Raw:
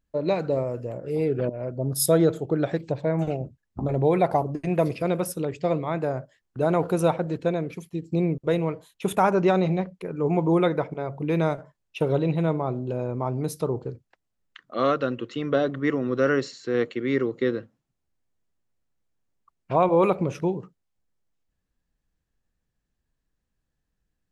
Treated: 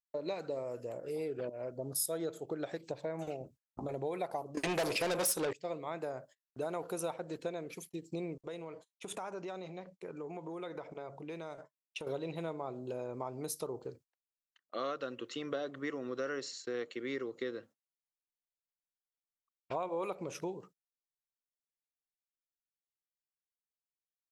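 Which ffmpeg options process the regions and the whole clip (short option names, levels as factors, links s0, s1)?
-filter_complex "[0:a]asettb=1/sr,asplit=3[s0][s1][s2];[s0]atrim=end=4.574[s3];[s1]atrim=start=4.57:end=5.53,asetpts=PTS-STARTPTS,afade=t=in:d=0.004:c=qsin,afade=t=out:st=0.956:d=0.004:c=qsin,lowshelf=f=170:g=9.5,acontrast=86,asplit=2[s4][s5];[s5]highpass=f=720:p=1,volume=20,asoftclip=type=tanh:threshold=0.631[s6];[s4][s6]amix=inputs=2:normalize=0,lowpass=f=6300:p=1,volume=0.501[s7];[s2]atrim=start=5.526[s8];[s3][s7]acrossfade=d=0.004:c1=hsin:c2=qsin[s9];[s9][s8]acrossfade=d=0.004:c1=qsin:c2=hsin,asettb=1/sr,asplit=3[s10][s11][s12];[s10]atrim=end=8.414[s13];[s11]atrim=start=8.41:end=12.07,asetpts=PTS-STARTPTS,afade=t=in:d=0.004:c=qsin,afade=t=out:st=3.656:d=0.004:c=qsin,lowpass=f=8800:w=0.5412,lowpass=f=8800:w=1.3066,agate=range=0.0224:threshold=0.00251:ratio=3:release=100:detection=peak,acompressor=threshold=0.0282:ratio=6:attack=3.2:release=140:knee=1:detection=peak[s14];[s12]atrim=start=12.066[s15];[s13][s14]acrossfade=d=0.004:c1=hsin:c2=qsin[s16];[s16][s15]acrossfade=d=0.004:c1=qsin:c2=hsin,agate=range=0.0562:threshold=0.00631:ratio=16:detection=peak,bass=f=250:g=-12,treble=f=4000:g=9,acompressor=threshold=0.0282:ratio=3,volume=0.531"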